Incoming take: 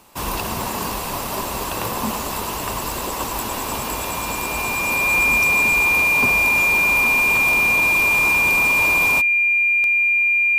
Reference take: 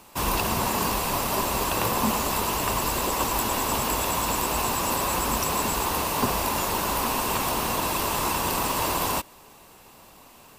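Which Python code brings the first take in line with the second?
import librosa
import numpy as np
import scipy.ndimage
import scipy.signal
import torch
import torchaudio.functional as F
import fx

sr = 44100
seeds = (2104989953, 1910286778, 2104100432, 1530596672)

y = fx.fix_declick_ar(x, sr, threshold=10.0)
y = fx.notch(y, sr, hz=2400.0, q=30.0)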